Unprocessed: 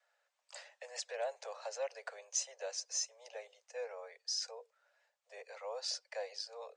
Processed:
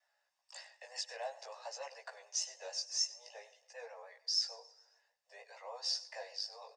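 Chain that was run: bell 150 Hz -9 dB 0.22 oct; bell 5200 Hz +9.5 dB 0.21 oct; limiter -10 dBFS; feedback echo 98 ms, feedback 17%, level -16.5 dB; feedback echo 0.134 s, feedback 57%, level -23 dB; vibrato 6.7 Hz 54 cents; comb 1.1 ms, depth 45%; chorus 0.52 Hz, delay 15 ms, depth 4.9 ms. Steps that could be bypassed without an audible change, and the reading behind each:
bell 150 Hz: input band starts at 400 Hz; limiter -10 dBFS: input peak -19.0 dBFS

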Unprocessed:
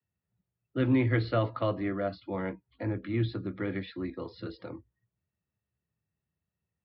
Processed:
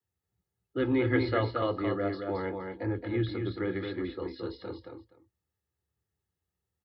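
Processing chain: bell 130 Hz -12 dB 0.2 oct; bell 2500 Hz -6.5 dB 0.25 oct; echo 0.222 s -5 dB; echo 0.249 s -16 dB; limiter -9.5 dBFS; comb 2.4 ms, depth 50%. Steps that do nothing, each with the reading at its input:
limiter -9.5 dBFS: input peak -14.0 dBFS

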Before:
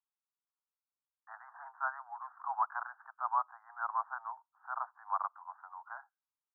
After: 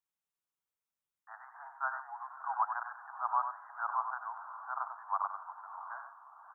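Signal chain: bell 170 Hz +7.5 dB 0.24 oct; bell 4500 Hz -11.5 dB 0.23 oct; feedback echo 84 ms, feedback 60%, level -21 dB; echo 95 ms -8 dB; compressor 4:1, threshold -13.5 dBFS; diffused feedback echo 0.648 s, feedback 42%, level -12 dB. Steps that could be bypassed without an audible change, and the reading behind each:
bell 170 Hz: input band starts at 570 Hz; bell 4500 Hz: input band ends at 1700 Hz; compressor, threshold -13.5 dBFS: input peak -18.5 dBFS

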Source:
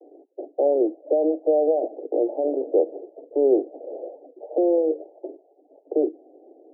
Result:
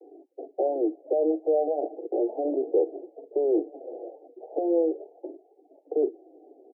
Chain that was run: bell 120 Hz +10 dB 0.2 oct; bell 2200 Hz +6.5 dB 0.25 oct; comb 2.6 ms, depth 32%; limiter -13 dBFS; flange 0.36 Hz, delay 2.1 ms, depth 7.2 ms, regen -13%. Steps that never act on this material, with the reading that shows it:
bell 120 Hz: input band starts at 240 Hz; bell 2200 Hz: input band ends at 850 Hz

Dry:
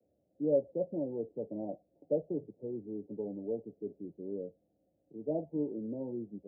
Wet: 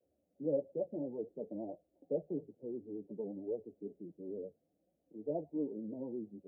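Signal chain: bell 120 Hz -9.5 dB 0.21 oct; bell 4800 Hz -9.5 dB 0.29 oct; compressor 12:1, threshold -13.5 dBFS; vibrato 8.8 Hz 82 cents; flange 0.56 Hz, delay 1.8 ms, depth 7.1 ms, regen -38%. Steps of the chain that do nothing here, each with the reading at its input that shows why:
bell 4800 Hz: input band ends at 760 Hz; compressor, threshold -13.5 dBFS: input peak -18.0 dBFS

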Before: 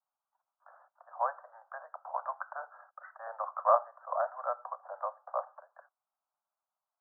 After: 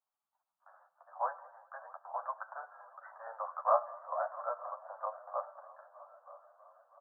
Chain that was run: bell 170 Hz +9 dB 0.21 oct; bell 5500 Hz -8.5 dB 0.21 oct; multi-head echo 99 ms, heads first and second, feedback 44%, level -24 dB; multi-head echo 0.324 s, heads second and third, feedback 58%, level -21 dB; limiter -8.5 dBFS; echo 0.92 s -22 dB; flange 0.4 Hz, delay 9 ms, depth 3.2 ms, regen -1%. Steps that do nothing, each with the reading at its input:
bell 170 Hz: input band starts at 450 Hz; bell 5500 Hz: input band ends at 1700 Hz; limiter -8.5 dBFS: input peak -12.0 dBFS

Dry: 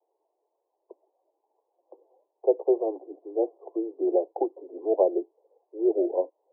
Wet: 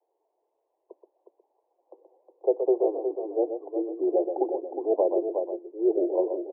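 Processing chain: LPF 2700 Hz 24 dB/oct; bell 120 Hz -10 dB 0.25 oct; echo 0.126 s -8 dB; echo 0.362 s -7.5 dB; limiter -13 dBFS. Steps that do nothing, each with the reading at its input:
LPF 2700 Hz: input band ends at 910 Hz; bell 120 Hz: input band starts at 270 Hz

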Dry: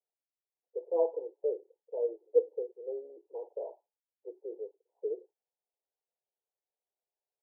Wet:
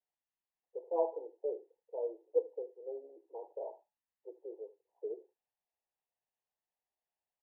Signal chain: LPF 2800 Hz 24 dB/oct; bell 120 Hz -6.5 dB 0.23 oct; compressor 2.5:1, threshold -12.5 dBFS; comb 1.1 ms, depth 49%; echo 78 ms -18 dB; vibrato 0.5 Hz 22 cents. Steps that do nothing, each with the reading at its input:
LPF 2800 Hz: input band ends at 850 Hz; bell 120 Hz: input band starts at 320 Hz; compressor, threshold -12.5 dBFS: input peak -14.0 dBFS

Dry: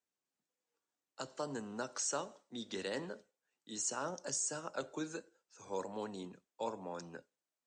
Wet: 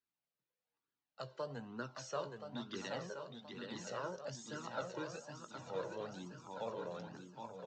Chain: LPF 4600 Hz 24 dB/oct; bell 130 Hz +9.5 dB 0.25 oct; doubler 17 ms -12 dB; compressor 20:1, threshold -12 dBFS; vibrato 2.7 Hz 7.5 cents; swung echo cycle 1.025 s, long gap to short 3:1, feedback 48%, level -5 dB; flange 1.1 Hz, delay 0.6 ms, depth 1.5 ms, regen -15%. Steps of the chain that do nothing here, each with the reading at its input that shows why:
compressor, threshold -12 dBFS: input peak -25.0 dBFS

